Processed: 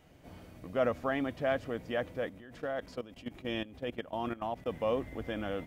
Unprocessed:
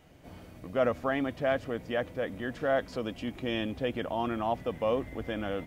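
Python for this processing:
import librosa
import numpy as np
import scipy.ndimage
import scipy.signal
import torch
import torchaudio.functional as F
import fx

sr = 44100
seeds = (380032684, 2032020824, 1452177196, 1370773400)

y = fx.level_steps(x, sr, step_db=16, at=(2.29, 4.66))
y = y * 10.0 ** (-2.5 / 20.0)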